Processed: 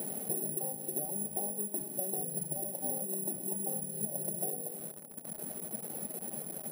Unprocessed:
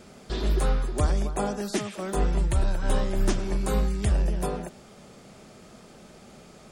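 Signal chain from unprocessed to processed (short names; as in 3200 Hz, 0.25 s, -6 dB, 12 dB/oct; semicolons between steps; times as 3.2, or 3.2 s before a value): 0.78–2.37 CVSD 64 kbps; reverb removal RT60 1.9 s; FFT band-pass 130–880 Hz; limiter -25 dBFS, peak gain reduction 9 dB; on a send at -11 dB: reverb RT60 0.75 s, pre-delay 66 ms; on the sum: careless resampling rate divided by 4×, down filtered, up zero stuff; notches 60/120/180/240/300/360/420 Hz; in parallel at -4.5 dB: bit-crush 7-bit; on the sum: compressor 10:1, threshold -34 dBFS, peak gain reduction 17 dB; gain +3.5 dB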